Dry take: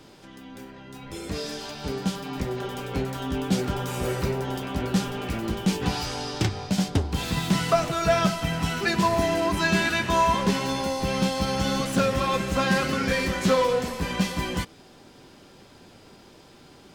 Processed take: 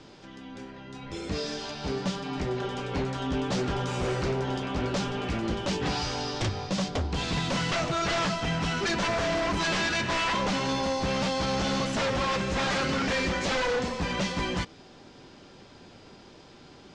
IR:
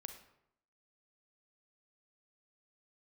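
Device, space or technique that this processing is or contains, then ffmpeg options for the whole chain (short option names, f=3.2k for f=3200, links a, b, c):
synthesiser wavefolder: -af "aeval=exprs='0.0794*(abs(mod(val(0)/0.0794+3,4)-2)-1)':c=same,lowpass=f=6.8k:w=0.5412,lowpass=f=6.8k:w=1.3066"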